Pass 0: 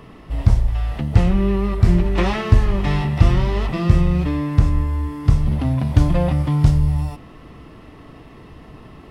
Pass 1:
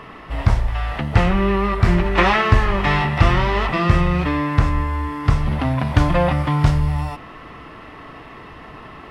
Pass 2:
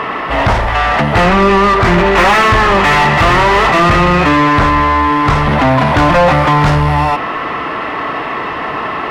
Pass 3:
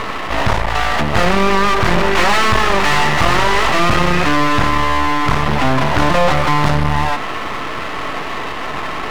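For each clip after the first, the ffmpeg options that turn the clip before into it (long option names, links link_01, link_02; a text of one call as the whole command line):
ffmpeg -i in.wav -af "equalizer=frequency=1500:width=0.41:gain=13.5,volume=-2.5dB" out.wav
ffmpeg -i in.wav -filter_complex "[0:a]acontrast=47,asplit=2[link_01][link_02];[link_02]highpass=frequency=720:poles=1,volume=26dB,asoftclip=type=tanh:threshold=0dB[link_03];[link_01][link_03]amix=inputs=2:normalize=0,lowpass=frequency=1700:poles=1,volume=-6dB,volume=-1dB" out.wav
ffmpeg -i in.wav -af "aeval=exprs='max(val(0),0)':channel_layout=same" out.wav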